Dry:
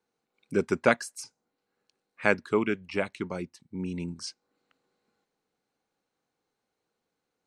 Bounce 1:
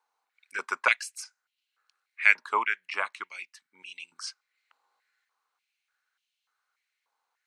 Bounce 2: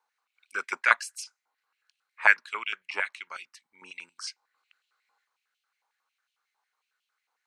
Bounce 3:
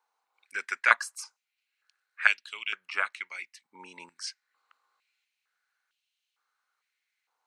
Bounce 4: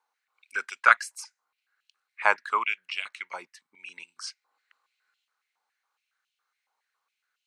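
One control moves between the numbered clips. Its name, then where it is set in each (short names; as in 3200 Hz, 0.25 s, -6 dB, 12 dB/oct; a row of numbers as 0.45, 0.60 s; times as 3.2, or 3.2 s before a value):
stepped high-pass, rate: 3.4, 11, 2.2, 7.2 Hz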